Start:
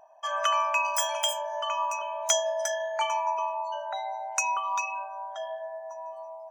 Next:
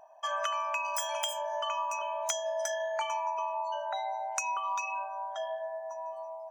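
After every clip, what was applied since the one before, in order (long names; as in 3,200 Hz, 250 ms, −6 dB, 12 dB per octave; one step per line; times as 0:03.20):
downward compressor 10 to 1, threshold −29 dBFS, peak gain reduction 11 dB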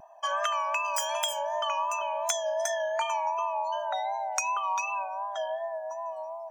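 pitch vibrato 2.7 Hz 54 cents
level +3.5 dB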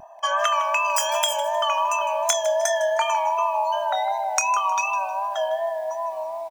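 double-tracking delay 27 ms −14 dB
feedback echo at a low word length 156 ms, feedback 35%, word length 8 bits, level −14 dB
level +7 dB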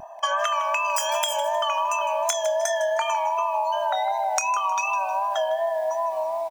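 downward compressor, threshold −25 dBFS, peak gain reduction 9 dB
level +4 dB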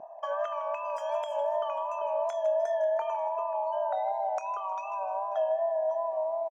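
resonant band-pass 500 Hz, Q 2
single-tap delay 538 ms −20 dB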